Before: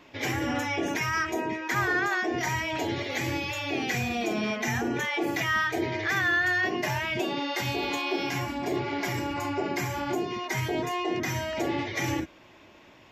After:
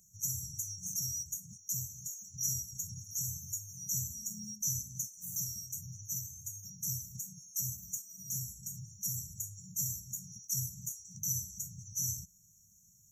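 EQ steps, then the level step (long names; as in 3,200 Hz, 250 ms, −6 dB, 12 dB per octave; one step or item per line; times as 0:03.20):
dynamic equaliser 8,700 Hz, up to −4 dB, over −49 dBFS, Q 0.89
linear-phase brick-wall band-stop 200–5,600 Hz
bass and treble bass −9 dB, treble +12 dB
0.0 dB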